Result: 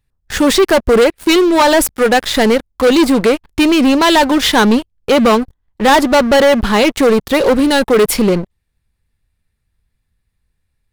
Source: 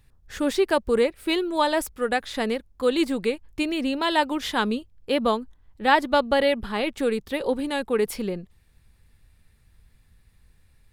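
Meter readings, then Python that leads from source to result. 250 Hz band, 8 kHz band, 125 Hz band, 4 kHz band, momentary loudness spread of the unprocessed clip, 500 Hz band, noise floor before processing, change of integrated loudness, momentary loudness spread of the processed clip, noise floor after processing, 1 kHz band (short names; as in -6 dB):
+14.5 dB, +18.0 dB, +16.5 dB, +13.5 dB, 7 LU, +12.5 dB, -60 dBFS, +13.0 dB, 5 LU, -69 dBFS, +11.0 dB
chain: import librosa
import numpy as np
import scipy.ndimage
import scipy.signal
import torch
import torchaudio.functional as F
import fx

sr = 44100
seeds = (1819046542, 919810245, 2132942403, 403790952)

y = fx.leveller(x, sr, passes=5)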